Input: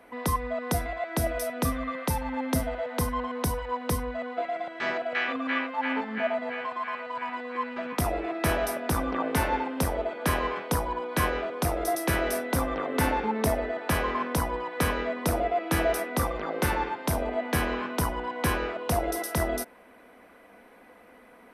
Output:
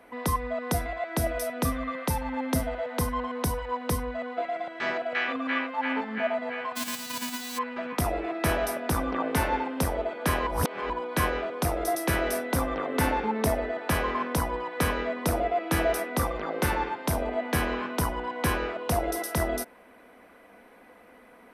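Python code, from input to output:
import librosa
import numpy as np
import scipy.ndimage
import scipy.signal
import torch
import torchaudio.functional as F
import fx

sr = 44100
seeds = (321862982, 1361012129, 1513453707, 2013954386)

y = fx.envelope_flatten(x, sr, power=0.1, at=(6.75, 7.57), fade=0.02)
y = fx.edit(y, sr, fx.reverse_span(start_s=10.47, length_s=0.43), tone=tone)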